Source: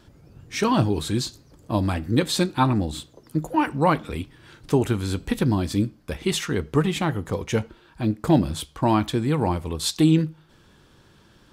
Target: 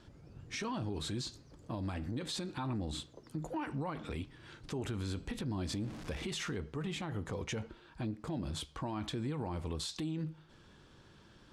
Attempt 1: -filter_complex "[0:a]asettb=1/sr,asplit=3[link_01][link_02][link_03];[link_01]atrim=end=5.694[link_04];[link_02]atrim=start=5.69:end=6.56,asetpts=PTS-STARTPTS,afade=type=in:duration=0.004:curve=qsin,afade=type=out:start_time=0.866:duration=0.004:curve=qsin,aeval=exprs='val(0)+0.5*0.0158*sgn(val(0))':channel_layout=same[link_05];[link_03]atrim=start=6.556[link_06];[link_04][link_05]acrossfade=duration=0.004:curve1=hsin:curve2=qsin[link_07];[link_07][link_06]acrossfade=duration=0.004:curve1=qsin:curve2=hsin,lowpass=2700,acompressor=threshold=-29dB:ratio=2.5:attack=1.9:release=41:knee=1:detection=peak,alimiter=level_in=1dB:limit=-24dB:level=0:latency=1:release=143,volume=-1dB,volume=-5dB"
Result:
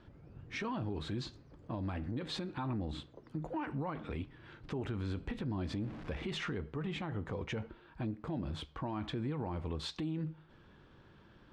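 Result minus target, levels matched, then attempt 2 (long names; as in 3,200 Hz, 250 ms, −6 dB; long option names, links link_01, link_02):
8,000 Hz band −11.5 dB
-filter_complex "[0:a]asettb=1/sr,asplit=3[link_01][link_02][link_03];[link_01]atrim=end=5.694[link_04];[link_02]atrim=start=5.69:end=6.56,asetpts=PTS-STARTPTS,afade=type=in:duration=0.004:curve=qsin,afade=type=out:start_time=0.866:duration=0.004:curve=qsin,aeval=exprs='val(0)+0.5*0.0158*sgn(val(0))':channel_layout=same[link_05];[link_03]atrim=start=6.556[link_06];[link_04][link_05]acrossfade=duration=0.004:curve1=hsin:curve2=qsin[link_07];[link_07][link_06]acrossfade=duration=0.004:curve1=qsin:curve2=hsin,lowpass=7800,acompressor=threshold=-29dB:ratio=2.5:attack=1.9:release=41:knee=1:detection=peak,alimiter=level_in=1dB:limit=-24dB:level=0:latency=1:release=143,volume=-1dB,volume=-5dB"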